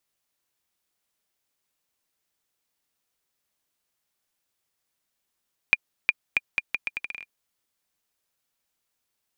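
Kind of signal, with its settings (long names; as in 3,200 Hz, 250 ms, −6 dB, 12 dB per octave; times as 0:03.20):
bouncing ball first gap 0.36 s, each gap 0.77, 2,410 Hz, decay 34 ms −4 dBFS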